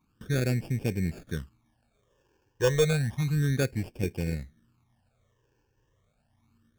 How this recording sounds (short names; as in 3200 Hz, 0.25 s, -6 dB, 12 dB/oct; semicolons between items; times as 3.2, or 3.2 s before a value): aliases and images of a low sample rate 2000 Hz, jitter 0%; phasing stages 12, 0.31 Hz, lowest notch 210–1300 Hz; AAC